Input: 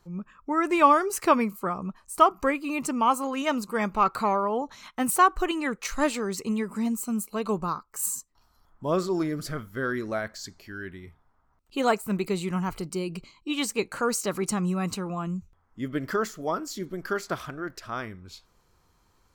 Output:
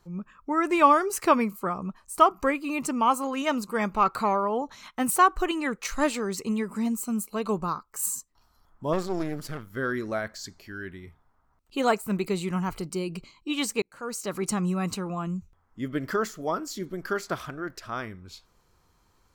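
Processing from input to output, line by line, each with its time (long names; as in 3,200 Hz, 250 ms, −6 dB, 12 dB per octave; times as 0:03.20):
0:08.93–0:09.70: gain on one half-wave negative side −12 dB
0:13.82–0:14.50: fade in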